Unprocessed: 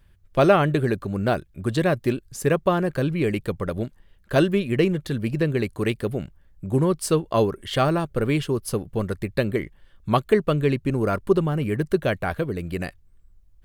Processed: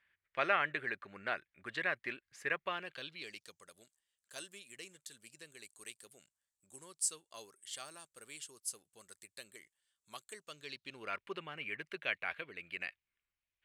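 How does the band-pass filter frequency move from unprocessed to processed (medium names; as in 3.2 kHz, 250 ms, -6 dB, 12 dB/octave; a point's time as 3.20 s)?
band-pass filter, Q 3
2.59 s 2 kHz
3.67 s 7.8 kHz
10.38 s 7.8 kHz
11.16 s 2.4 kHz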